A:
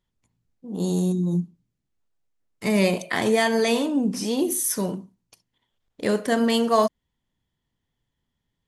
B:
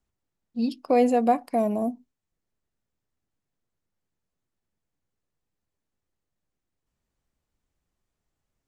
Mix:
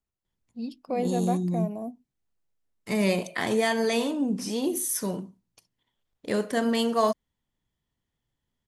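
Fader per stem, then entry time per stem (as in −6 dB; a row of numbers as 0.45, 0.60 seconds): −4.0, −8.5 decibels; 0.25, 0.00 seconds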